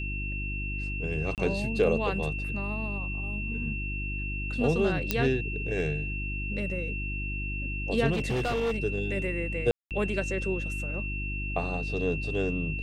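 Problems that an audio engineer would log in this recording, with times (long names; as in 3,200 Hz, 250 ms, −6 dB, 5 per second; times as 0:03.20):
mains hum 50 Hz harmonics 7 −34 dBFS
whistle 2,700 Hz −35 dBFS
0:01.35–0:01.38: drop-out 28 ms
0:05.11: click −9 dBFS
0:08.12–0:08.78: clipping −24.5 dBFS
0:09.71–0:09.91: drop-out 198 ms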